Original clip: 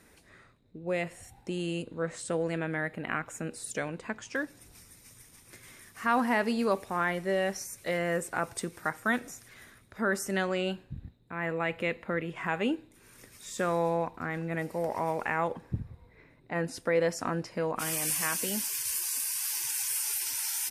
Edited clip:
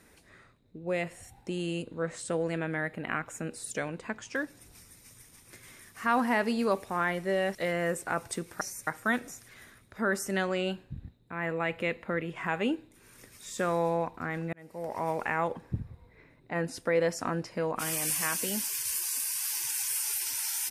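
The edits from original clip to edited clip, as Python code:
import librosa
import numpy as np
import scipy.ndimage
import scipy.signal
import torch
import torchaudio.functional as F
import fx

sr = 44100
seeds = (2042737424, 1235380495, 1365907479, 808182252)

y = fx.edit(x, sr, fx.move(start_s=7.55, length_s=0.26, to_s=8.87),
    fx.fade_in_span(start_s=14.53, length_s=0.57), tone=tone)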